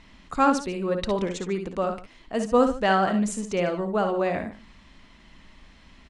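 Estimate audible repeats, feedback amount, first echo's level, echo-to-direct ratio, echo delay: 2, no regular repeats, -9.5 dB, -6.5 dB, 57 ms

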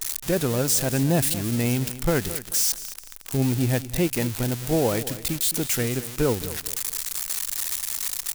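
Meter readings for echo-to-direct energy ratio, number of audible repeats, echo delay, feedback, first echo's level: -14.5 dB, 2, 217 ms, 28%, -15.0 dB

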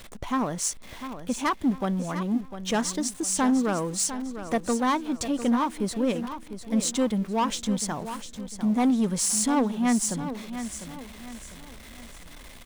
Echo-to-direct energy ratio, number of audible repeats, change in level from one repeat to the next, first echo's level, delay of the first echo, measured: -10.5 dB, 3, -8.5 dB, -11.0 dB, 701 ms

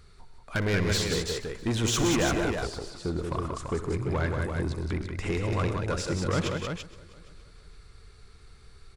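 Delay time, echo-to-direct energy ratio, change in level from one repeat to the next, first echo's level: 61 ms, -1.5 dB, no regular repeats, -16.0 dB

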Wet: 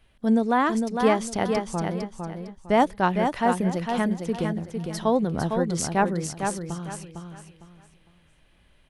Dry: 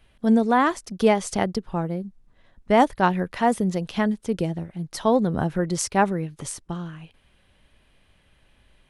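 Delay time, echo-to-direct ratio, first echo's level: 455 ms, -5.0 dB, -5.5 dB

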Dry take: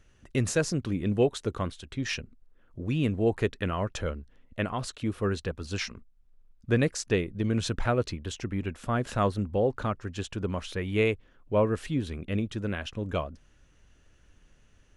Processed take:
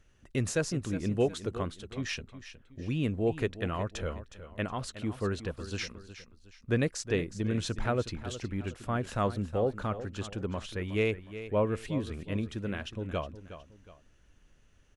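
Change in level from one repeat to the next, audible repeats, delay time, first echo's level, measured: -8.5 dB, 2, 365 ms, -13.0 dB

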